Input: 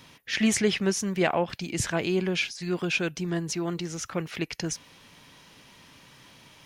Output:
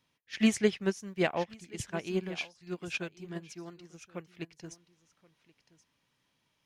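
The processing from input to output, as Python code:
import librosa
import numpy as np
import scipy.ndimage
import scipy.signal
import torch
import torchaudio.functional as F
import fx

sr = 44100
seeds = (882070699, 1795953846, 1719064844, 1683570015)

y = x + 10.0 ** (-11.0 / 20.0) * np.pad(x, (int(1077 * sr / 1000.0), 0))[:len(x)]
y = fx.upward_expand(y, sr, threshold_db=-35.0, expansion=2.5)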